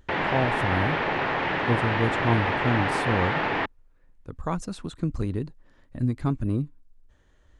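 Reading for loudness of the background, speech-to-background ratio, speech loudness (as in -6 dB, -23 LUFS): -26.0 LUFS, -3.0 dB, -29.0 LUFS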